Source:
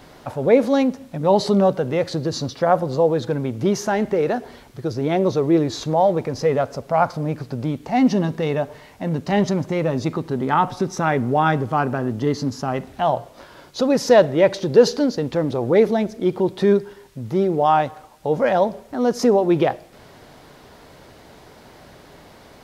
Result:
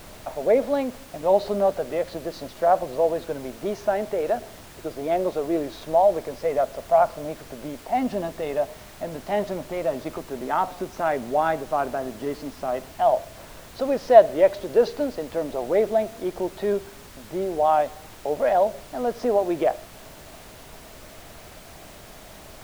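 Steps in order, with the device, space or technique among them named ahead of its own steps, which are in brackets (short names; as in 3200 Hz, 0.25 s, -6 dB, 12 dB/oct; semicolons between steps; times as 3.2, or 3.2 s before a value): horn gramophone (BPF 280–3400 Hz; bell 650 Hz +11.5 dB 0.32 oct; wow and flutter; pink noise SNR 20 dB); gain -7 dB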